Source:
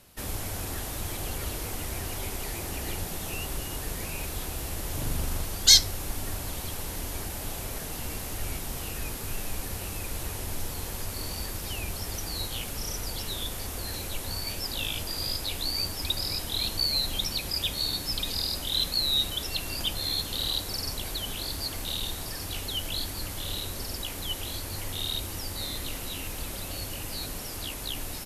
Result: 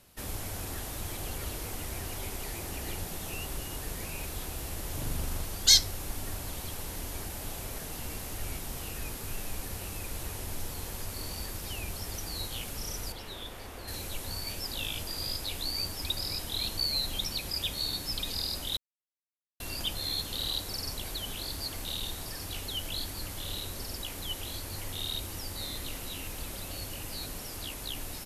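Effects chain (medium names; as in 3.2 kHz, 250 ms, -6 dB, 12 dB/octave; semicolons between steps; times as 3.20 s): 13.12–13.88 s: tone controls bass -6 dB, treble -11 dB; 18.77–19.60 s: mute; trim -3.5 dB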